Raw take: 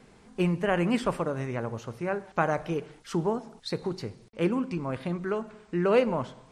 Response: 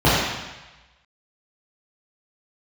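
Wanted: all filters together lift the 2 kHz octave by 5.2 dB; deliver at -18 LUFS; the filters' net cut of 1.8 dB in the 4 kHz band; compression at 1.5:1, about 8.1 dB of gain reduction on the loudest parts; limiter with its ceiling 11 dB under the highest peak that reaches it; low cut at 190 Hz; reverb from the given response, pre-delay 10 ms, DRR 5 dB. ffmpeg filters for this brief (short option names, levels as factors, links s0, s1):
-filter_complex "[0:a]highpass=190,equalizer=f=2000:t=o:g=8.5,equalizer=f=4000:t=o:g=-7,acompressor=threshold=0.01:ratio=1.5,alimiter=level_in=1.19:limit=0.0631:level=0:latency=1,volume=0.841,asplit=2[s0][s1];[1:a]atrim=start_sample=2205,adelay=10[s2];[s1][s2]afir=irnorm=-1:irlink=0,volume=0.0335[s3];[s0][s3]amix=inputs=2:normalize=0,volume=8.41"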